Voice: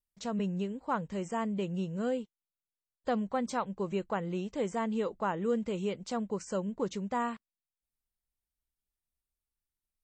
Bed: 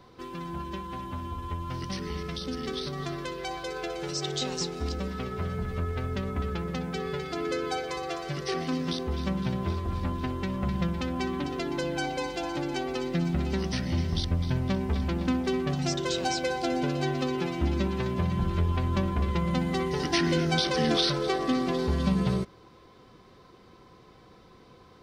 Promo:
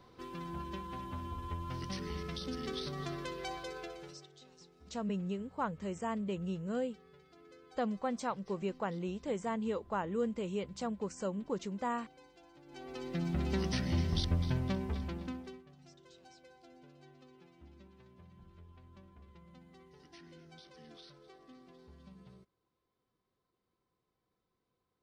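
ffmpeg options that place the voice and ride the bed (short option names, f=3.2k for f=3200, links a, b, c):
-filter_complex "[0:a]adelay=4700,volume=-3.5dB[a];[1:a]volume=18dB,afade=t=out:st=3.49:d=0.79:silence=0.0794328,afade=t=in:st=12.65:d=0.93:silence=0.0630957,afade=t=out:st=14.35:d=1.29:silence=0.0473151[b];[a][b]amix=inputs=2:normalize=0"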